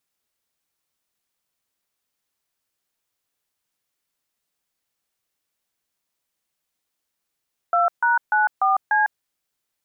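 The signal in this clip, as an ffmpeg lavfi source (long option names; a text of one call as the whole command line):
ffmpeg -f lavfi -i "aevalsrc='0.126*clip(min(mod(t,0.295),0.152-mod(t,0.295))/0.002,0,1)*(eq(floor(t/0.295),0)*(sin(2*PI*697*mod(t,0.295))+sin(2*PI*1336*mod(t,0.295)))+eq(floor(t/0.295),1)*(sin(2*PI*941*mod(t,0.295))+sin(2*PI*1477*mod(t,0.295)))+eq(floor(t/0.295),2)*(sin(2*PI*852*mod(t,0.295))+sin(2*PI*1477*mod(t,0.295)))+eq(floor(t/0.295),3)*(sin(2*PI*770*mod(t,0.295))+sin(2*PI*1209*mod(t,0.295)))+eq(floor(t/0.295),4)*(sin(2*PI*852*mod(t,0.295))+sin(2*PI*1633*mod(t,0.295))))':duration=1.475:sample_rate=44100" out.wav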